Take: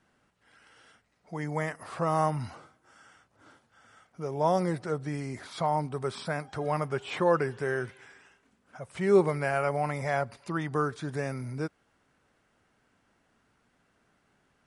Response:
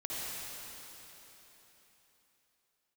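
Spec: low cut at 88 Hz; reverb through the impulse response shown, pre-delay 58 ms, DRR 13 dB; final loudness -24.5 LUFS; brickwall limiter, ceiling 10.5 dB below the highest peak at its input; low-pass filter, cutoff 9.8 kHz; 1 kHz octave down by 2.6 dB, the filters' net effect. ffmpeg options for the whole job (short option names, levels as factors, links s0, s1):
-filter_complex "[0:a]highpass=88,lowpass=9800,equalizer=f=1000:t=o:g=-3.5,alimiter=limit=0.0841:level=0:latency=1,asplit=2[s0][s1];[1:a]atrim=start_sample=2205,adelay=58[s2];[s1][s2]afir=irnorm=-1:irlink=0,volume=0.141[s3];[s0][s3]amix=inputs=2:normalize=0,volume=2.99"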